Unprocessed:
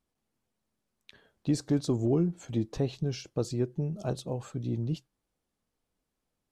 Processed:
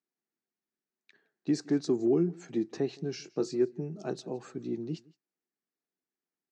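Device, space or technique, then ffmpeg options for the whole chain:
television speaker: -filter_complex "[0:a]agate=range=-10dB:threshold=-55dB:ratio=16:detection=peak,highpass=120,asettb=1/sr,asplit=3[link_01][link_02][link_03];[link_01]atrim=end=3.194[link_04];[link_02]atrim=start=3.19:end=3.62,asetpts=PTS-STARTPTS,afade=type=in:duration=0.004:curve=qsin,afade=type=out:start_time=0.426:duration=0.004:curve=qsin,asplit=2[link_05][link_06];[link_06]adelay=22,volume=-8dB[link_07];[link_05][link_07]amix=inputs=2:normalize=0,atrim=end_sample=18963[link_08];[link_03]atrim=start=3.616[link_09];[link_04][link_08]acrossfade=duration=0.004:curve1=hsin:curve2=qsin[link_10];[link_10][link_09]acrossfade=duration=0.004:curve1=qsin:curve2=hsin,highpass=frequency=170:width=0.5412,highpass=frequency=170:width=1.3066,equalizer=frequency=220:width_type=q:width=4:gain=-3,equalizer=frequency=370:width_type=q:width=4:gain=6,equalizer=frequency=550:width_type=q:width=4:gain=-9,equalizer=frequency=1000:width_type=q:width=4:gain=-5,equalizer=frequency=1800:width_type=q:width=4:gain=5,equalizer=frequency=3300:width_type=q:width=4:gain=-9,lowpass=frequency=6800:width=0.5412,lowpass=frequency=6800:width=1.3066,aecho=1:1:166:0.0631"

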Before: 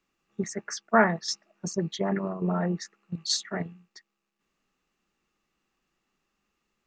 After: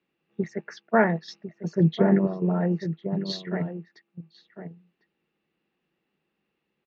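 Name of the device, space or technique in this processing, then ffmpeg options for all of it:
guitar cabinet: -filter_complex "[0:a]asettb=1/sr,asplit=3[link_01][link_02][link_03];[link_01]atrim=end=1.804[link_04];[link_02]atrim=start=1.8:end=2.27,asetpts=PTS-STARTPTS,afade=type=in:duration=0.004:curve=qsin,afade=type=out:start_time=0.466:duration=0.004:curve=qsin,lowshelf=frequency=400:gain=9.5[link_05];[link_03]atrim=start=2.266[link_06];[link_04][link_05]acrossfade=duration=0.004:curve1=hsin:curve2=qsin[link_07];[link_07][link_06]acrossfade=duration=0.004:curve1=qsin:curve2=hsin,highpass=87,equalizer=frequency=160:width_type=q:width=4:gain=6,equalizer=frequency=340:width_type=q:width=4:gain=4,equalizer=frequency=490:width_type=q:width=4:gain=5,equalizer=frequency=1200:width_type=q:width=4:gain=-8,lowpass=frequency=3800:width=0.5412,lowpass=frequency=3800:width=1.3066,asplit=2[link_08][link_09];[link_09]adelay=1050,volume=-10dB,highshelf=frequency=4000:gain=-23.6[link_10];[link_08][link_10]amix=inputs=2:normalize=0"

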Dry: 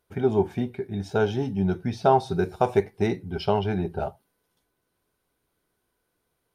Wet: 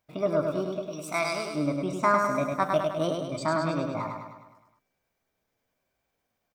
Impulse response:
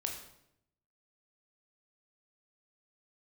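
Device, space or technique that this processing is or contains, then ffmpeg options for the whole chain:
chipmunk voice: -filter_complex "[0:a]asetrate=68011,aresample=44100,atempo=0.64842,asettb=1/sr,asplit=3[link_01][link_02][link_03];[link_01]atrim=end=0.874[link_04];[link_02]atrim=start=0.87:end=1.55,asetpts=PTS-STARTPTS,afade=type=in:duration=0.004:curve=qsin,afade=type=out:start_time=0.676:duration=0.004:curve=qsin,tiltshelf=frequency=970:gain=-9[link_05];[link_03]atrim=start=1.546[link_06];[link_04][link_05]acrossfade=duration=0.004:curve1=hsin:curve2=qsin[link_07];[link_07][link_06]acrossfade=duration=0.004:curve1=qsin:curve2=hsin,aecho=1:1:103|206|309|412|515|618|721:0.631|0.347|0.191|0.105|0.0577|0.0318|0.0175,volume=-4.5dB"

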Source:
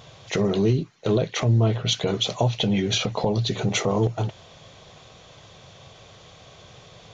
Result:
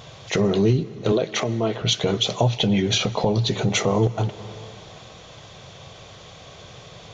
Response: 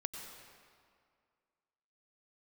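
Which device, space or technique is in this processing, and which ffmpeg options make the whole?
ducked reverb: -filter_complex "[0:a]asettb=1/sr,asplit=3[link_01][link_02][link_03];[link_01]atrim=end=1.124[link_04];[link_02]atrim=start=1.12:end=1.82,asetpts=PTS-STARTPTS,afade=type=in:duration=0.004:curve=qsin,afade=type=out:start_time=0.696:duration=0.004:curve=qsin,highpass=240[link_05];[link_03]atrim=start=1.816[link_06];[link_04][link_05]acrossfade=duration=0.004:curve1=hsin:curve2=qsin[link_07];[link_07][link_06]acrossfade=duration=0.004:curve1=qsin:curve2=hsin,asplit=3[link_08][link_09][link_10];[1:a]atrim=start_sample=2205[link_11];[link_09][link_11]afir=irnorm=-1:irlink=0[link_12];[link_10]apad=whole_len=314792[link_13];[link_12][link_13]sidechaincompress=threshold=-31dB:ratio=3:attack=7.2:release=305,volume=-4dB[link_14];[link_08][link_14]amix=inputs=2:normalize=0,volume=1dB"

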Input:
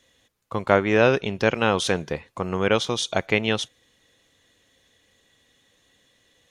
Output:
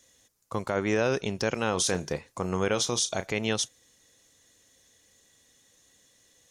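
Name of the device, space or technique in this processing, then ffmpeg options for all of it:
over-bright horn tweeter: -filter_complex "[0:a]asettb=1/sr,asplit=3[link_01][link_02][link_03];[link_01]atrim=end=1.694[link_04];[link_02]atrim=start=1.69:end=3.31,asetpts=PTS-STARTPTS,afade=type=in:duration=0.004:curve=qsin,afade=type=out:start_time=1.616:duration=0.004:curve=qsin,asplit=2[link_05][link_06];[link_06]adelay=33,volume=-13.5dB[link_07];[link_05][link_07]amix=inputs=2:normalize=0,atrim=end_sample=71442[link_08];[link_03]atrim=start=3.306[link_09];[link_04][link_08]acrossfade=duration=0.004:curve1=hsin:curve2=qsin[link_10];[link_10][link_09]acrossfade=duration=0.004:curve1=qsin:curve2=hsin,highshelf=frequency=4400:width_type=q:width=1.5:gain=8.5,alimiter=limit=-13dB:level=0:latency=1:release=46,volume=-3dB"

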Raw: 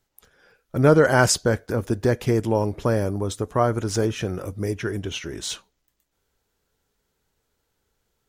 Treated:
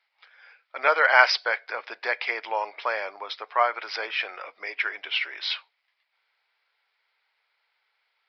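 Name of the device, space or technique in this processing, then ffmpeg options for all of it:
musical greeting card: -filter_complex "[0:a]aresample=11025,aresample=44100,highpass=frequency=750:width=0.5412,highpass=frequency=750:width=1.3066,equalizer=frequency=2200:width_type=o:width=0.41:gain=12,asettb=1/sr,asplit=3[link_01][link_02][link_03];[link_01]atrim=end=0.884[link_04];[link_02]atrim=start=0.88:end=1.42,asetpts=PTS-STARTPTS,afade=type=in:duration=0.004:curve=qsin,afade=type=out:start_time=0.536:duration=0.004:curve=qsin,highpass=frequency=310:width=0.5412,highpass=frequency=310:width=1.3066[link_05];[link_03]atrim=start=1.416[link_06];[link_04][link_05]acrossfade=duration=0.004:curve1=hsin:curve2=qsin[link_07];[link_07][link_06]acrossfade=duration=0.004:curve1=qsin:curve2=hsin,volume=3dB"

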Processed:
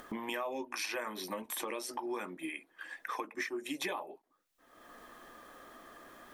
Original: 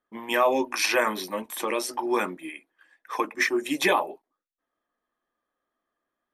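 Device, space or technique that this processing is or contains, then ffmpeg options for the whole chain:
upward and downward compression: -af "acompressor=mode=upward:threshold=-25dB:ratio=2.5,acompressor=threshold=-33dB:ratio=5,volume=-3dB"

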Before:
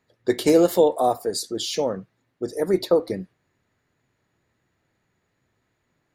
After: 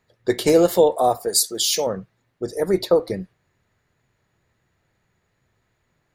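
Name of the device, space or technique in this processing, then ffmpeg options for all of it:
low shelf boost with a cut just above: -filter_complex "[0:a]lowshelf=frequency=67:gain=7.5,equalizer=frequency=280:width_type=o:width=0.59:gain=-5.5,asettb=1/sr,asplit=3[link_01][link_02][link_03];[link_01]atrim=end=1.284[link_04];[link_02]atrim=start=1.28:end=1.87,asetpts=PTS-STARTPTS,afade=type=in:duration=0.004:curve=qsin,afade=type=out:start_time=0.586:duration=0.004:curve=qsin,aemphasis=mode=production:type=bsi[link_05];[link_03]atrim=start=1.866[link_06];[link_04][link_05]acrossfade=duration=0.004:curve1=hsin:curve2=qsin[link_07];[link_07][link_06]acrossfade=duration=0.004:curve1=qsin:curve2=hsin,volume=2.5dB"

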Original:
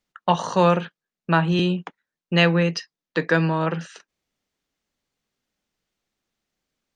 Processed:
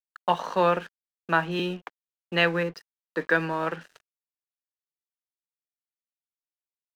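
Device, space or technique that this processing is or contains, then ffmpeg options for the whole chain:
pocket radio on a weak battery: -filter_complex "[0:a]asettb=1/sr,asplit=3[link_01][link_02][link_03];[link_01]atrim=end=2.634[link_04];[link_02]atrim=start=2.63:end=3.21,asetpts=PTS-STARTPTS,afade=type=in:duration=0.004:curve=qsin,afade=type=out:start_time=0.576:duration=0.004:curve=qsin,equalizer=frequency=2800:width_type=o:width=1.3:gain=-11[link_05];[link_03]atrim=start=3.206[link_06];[link_04][link_05]acrossfade=duration=0.004:curve1=hsin:curve2=qsin[link_07];[link_07][link_06]acrossfade=duration=0.004:curve1=qsin:curve2=hsin,highpass=260,lowpass=4000,aeval=exprs='sgn(val(0))*max(abs(val(0))-0.00631,0)':channel_layout=same,equalizer=frequency=1600:width_type=o:width=0.54:gain=4,volume=-3.5dB"

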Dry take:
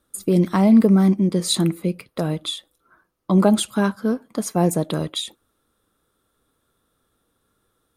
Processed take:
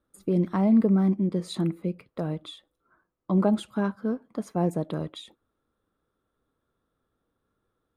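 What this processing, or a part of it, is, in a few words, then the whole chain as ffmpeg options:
through cloth: -af "highshelf=frequency=3500:gain=-17,volume=-6.5dB"

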